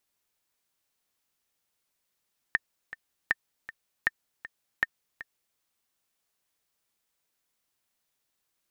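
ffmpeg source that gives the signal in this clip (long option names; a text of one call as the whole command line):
ffmpeg -f lavfi -i "aevalsrc='pow(10,(-10-16*gte(mod(t,2*60/158),60/158))/20)*sin(2*PI*1810*mod(t,60/158))*exp(-6.91*mod(t,60/158)/0.03)':duration=3.03:sample_rate=44100" out.wav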